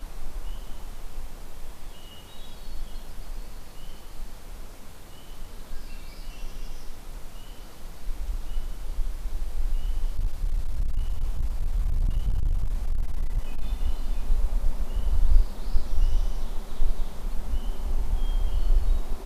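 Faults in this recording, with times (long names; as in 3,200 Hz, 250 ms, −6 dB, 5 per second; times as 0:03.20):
0:10.09–0:13.62: clipping −19.5 dBFS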